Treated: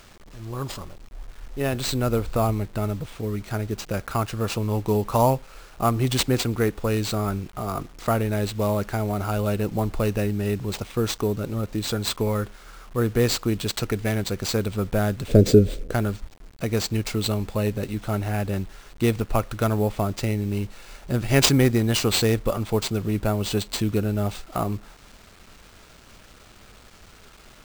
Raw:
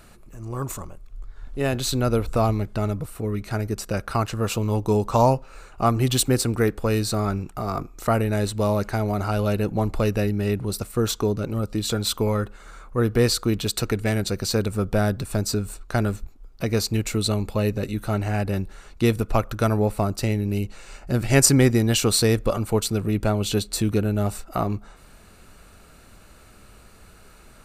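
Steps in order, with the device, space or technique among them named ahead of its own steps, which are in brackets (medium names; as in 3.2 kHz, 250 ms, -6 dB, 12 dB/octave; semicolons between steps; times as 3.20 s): early 8-bit sampler (sample-rate reducer 12 kHz, jitter 0%; bit crusher 8-bit); 15.28–15.93 s: resonant low shelf 660 Hz +10 dB, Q 3; trim -1.5 dB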